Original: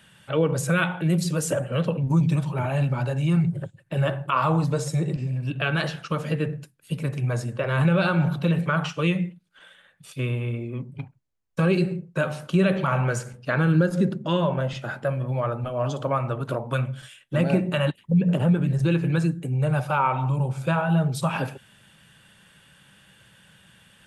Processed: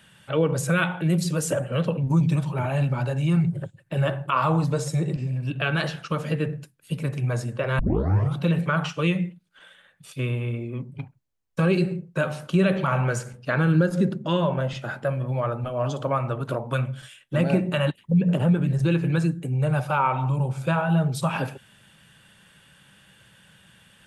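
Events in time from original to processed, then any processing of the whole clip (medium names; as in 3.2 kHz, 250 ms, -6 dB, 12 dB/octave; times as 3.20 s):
7.79 s: tape start 0.58 s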